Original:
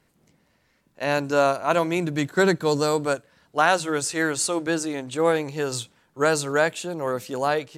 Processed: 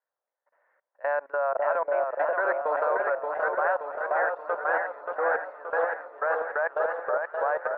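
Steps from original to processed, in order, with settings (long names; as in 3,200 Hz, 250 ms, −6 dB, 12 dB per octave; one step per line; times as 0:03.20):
automatic gain control gain up to 8.5 dB
elliptic band-pass filter 550–1,700 Hz, stop band 70 dB
delay that swaps between a low-pass and a high-pass 525 ms, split 800 Hz, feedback 71%, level −2 dB
output level in coarse steps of 22 dB
feedback echo with a swinging delay time 577 ms, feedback 57%, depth 97 cents, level −4.5 dB
level −3.5 dB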